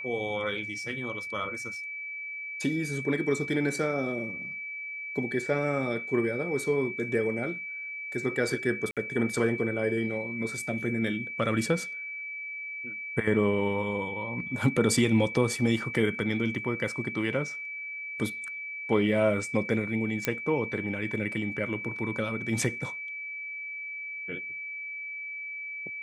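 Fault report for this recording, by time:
whine 2.3 kHz -35 dBFS
8.91–8.97 s: dropout 57 ms
20.25 s: pop -10 dBFS

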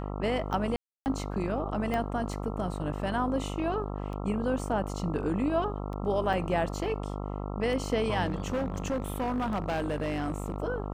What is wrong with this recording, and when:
buzz 50 Hz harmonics 27 -35 dBFS
tick 33 1/3 rpm
0.76–1.06 s: dropout 299 ms
1.94 s: pop -19 dBFS
6.33 s: dropout 4.4 ms
8.25–10.56 s: clipped -26 dBFS

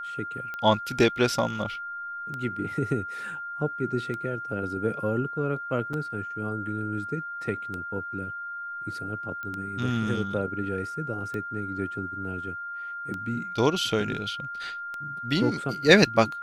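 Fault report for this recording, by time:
tick 33 1/3 rpm -22 dBFS
whine 1.4 kHz -33 dBFS
5.93 s: dropout 4.2 ms
9.43 s: pop -24 dBFS

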